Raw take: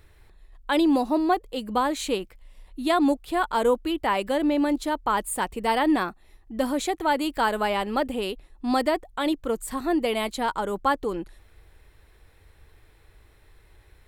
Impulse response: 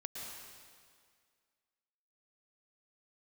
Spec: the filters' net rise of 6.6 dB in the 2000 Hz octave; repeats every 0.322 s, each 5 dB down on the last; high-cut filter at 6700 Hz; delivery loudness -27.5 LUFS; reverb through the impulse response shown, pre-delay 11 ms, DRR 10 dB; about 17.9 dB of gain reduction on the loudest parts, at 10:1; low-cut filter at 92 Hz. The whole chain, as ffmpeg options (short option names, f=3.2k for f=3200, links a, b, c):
-filter_complex "[0:a]highpass=92,lowpass=6.7k,equalizer=f=2k:t=o:g=8.5,acompressor=threshold=-35dB:ratio=10,aecho=1:1:322|644|966|1288|1610|1932|2254:0.562|0.315|0.176|0.0988|0.0553|0.031|0.0173,asplit=2[a][b];[1:a]atrim=start_sample=2205,adelay=11[c];[b][c]afir=irnorm=-1:irlink=0,volume=-9dB[d];[a][d]amix=inputs=2:normalize=0,volume=10dB"